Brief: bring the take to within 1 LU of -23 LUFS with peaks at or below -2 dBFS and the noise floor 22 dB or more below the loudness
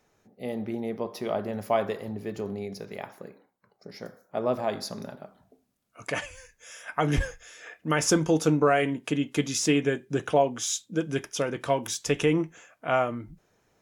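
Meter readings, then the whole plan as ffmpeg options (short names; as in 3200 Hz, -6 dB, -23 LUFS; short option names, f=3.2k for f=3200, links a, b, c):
loudness -28.0 LUFS; peak -10.5 dBFS; loudness target -23.0 LUFS
-> -af "volume=5dB"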